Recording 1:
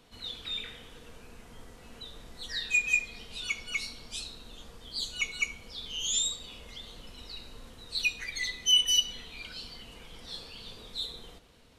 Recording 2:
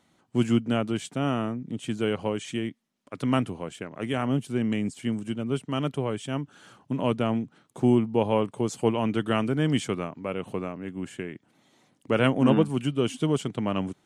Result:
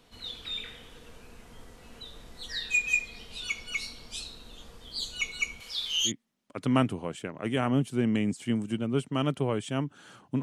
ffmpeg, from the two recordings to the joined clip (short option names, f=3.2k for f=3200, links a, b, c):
-filter_complex "[0:a]asettb=1/sr,asplit=3[a][b][c];[a]atrim=end=5.604[d];[b]atrim=start=5.6:end=6.12,asetpts=PTS-STARTPTS,afade=t=in:d=0.004:c=qsin,afade=t=out:st=0.516:d=0.004:c=qsin,tiltshelf=f=820:g=-9.5[e];[c]atrim=start=6.116[f];[d][e]acrossfade=d=0.004:c1=hsin:c2=qsin[g];[g][f]acrossfade=d=0.004:c1=qsin:c2=hsin,apad=whole_dur=10.42,atrim=end=10.42,atrim=end=6.12,asetpts=PTS-STARTPTS[h];[1:a]atrim=start=2.61:end=6.99,asetpts=PTS-STARTPTS[i];[h][i]acrossfade=d=0.08:c1=tri:c2=tri"